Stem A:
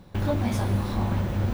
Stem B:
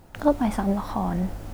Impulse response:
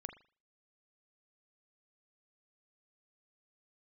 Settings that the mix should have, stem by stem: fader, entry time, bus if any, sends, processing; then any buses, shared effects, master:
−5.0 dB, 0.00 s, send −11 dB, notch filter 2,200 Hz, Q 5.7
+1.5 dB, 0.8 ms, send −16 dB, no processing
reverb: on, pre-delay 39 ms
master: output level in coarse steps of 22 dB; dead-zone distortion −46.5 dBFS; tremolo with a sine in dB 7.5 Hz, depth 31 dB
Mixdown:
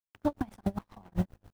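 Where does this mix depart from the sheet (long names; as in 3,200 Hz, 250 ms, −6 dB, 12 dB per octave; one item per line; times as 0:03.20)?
stem A: send off
stem B: send −16 dB → −22 dB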